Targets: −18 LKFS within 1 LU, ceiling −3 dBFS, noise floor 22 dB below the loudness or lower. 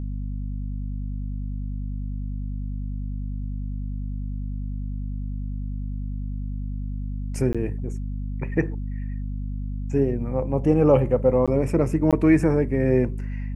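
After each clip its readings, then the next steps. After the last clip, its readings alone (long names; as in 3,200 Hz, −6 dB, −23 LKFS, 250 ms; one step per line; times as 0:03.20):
number of dropouts 3; longest dropout 16 ms; mains hum 50 Hz; hum harmonics up to 250 Hz; level of the hum −26 dBFS; integrated loudness −25.5 LKFS; sample peak −4.5 dBFS; target loudness −18.0 LKFS
→ repair the gap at 0:07.53/0:11.46/0:12.11, 16 ms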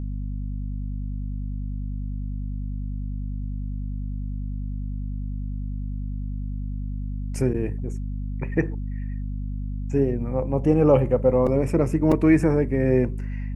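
number of dropouts 0; mains hum 50 Hz; hum harmonics up to 250 Hz; level of the hum −26 dBFS
→ mains-hum notches 50/100/150/200/250 Hz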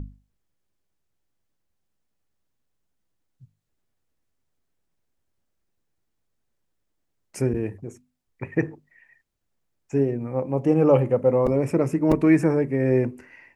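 mains hum none found; integrated loudness −22.5 LKFS; sample peak −5.5 dBFS; target loudness −18.0 LKFS
→ level +4.5 dB
brickwall limiter −3 dBFS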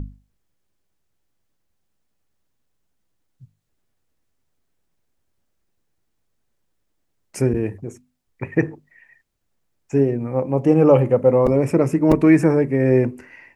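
integrated loudness −18.0 LKFS; sample peak −3.0 dBFS; background noise floor −71 dBFS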